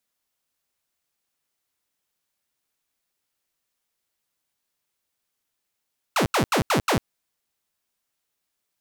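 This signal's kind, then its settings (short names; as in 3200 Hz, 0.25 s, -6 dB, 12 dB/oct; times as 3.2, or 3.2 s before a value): burst of laser zaps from 1500 Hz, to 90 Hz, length 0.10 s saw, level -15.5 dB, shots 5, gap 0.08 s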